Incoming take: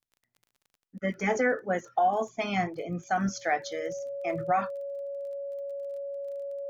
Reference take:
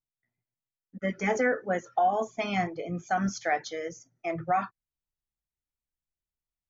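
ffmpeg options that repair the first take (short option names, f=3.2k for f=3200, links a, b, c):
-af "adeclick=t=4,bandreject=f=560:w=30"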